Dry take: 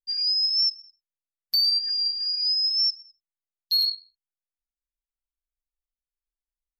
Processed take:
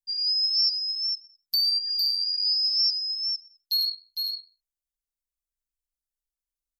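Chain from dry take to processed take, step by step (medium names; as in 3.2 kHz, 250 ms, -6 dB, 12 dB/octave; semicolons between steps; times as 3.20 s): tone controls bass +6 dB, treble +11 dB; delay 456 ms -5 dB; trim -9 dB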